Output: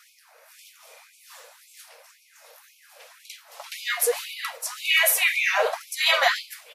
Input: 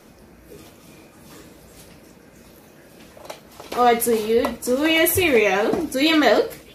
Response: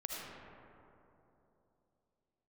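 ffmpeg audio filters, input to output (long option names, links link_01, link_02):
-filter_complex "[0:a]asplit=2[link_01][link_02];[link_02]asetrate=37084,aresample=44100,atempo=1.18921,volume=-7dB[link_03];[link_01][link_03]amix=inputs=2:normalize=0,afftfilt=real='re*gte(b*sr/1024,430*pow(2200/430,0.5+0.5*sin(2*PI*1.9*pts/sr)))':imag='im*gte(b*sr/1024,430*pow(2200/430,0.5+0.5*sin(2*PI*1.9*pts/sr)))':win_size=1024:overlap=0.75"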